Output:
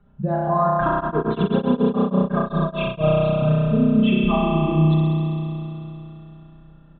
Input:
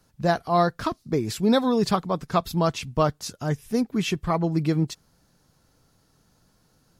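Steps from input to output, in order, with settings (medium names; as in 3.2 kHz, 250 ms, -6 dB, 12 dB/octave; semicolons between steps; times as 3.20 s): spectral contrast enhancement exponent 1.7; comb 5 ms, depth 75%; compression, threshold -26 dBFS, peak gain reduction 13 dB; spring tank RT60 3.3 s, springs 32 ms, chirp 40 ms, DRR -6 dB; resampled via 8 kHz; 0.99–3.13 s: tremolo of two beating tones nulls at 9.4 Hz -> 3.5 Hz; trim +5 dB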